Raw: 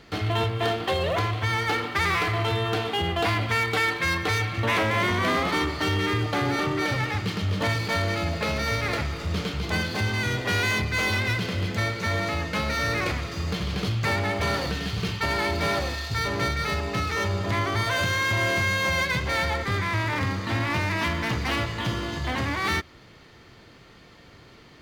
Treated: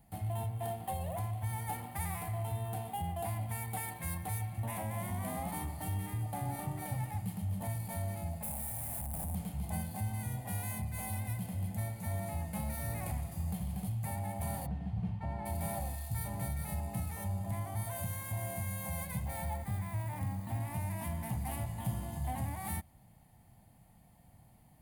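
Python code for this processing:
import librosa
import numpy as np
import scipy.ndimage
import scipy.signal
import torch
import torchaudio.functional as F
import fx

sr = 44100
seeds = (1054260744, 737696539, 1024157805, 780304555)

y = fx.schmitt(x, sr, flips_db=-36.5, at=(8.43, 9.35))
y = fx.spacing_loss(y, sr, db_at_10k=34, at=(14.65, 15.45), fade=0.02)
y = fx.resample_linear(y, sr, factor=2, at=(19.25, 20.6))
y = fx.curve_eq(y, sr, hz=(200.0, 410.0, 780.0, 1300.0, 1900.0, 3900.0, 5900.0, 9800.0, 15000.0), db=(0, -21, 2, -21, -15, -19, -16, 13, 11))
y = fx.rider(y, sr, range_db=10, speed_s=0.5)
y = y * librosa.db_to_amplitude(-8.0)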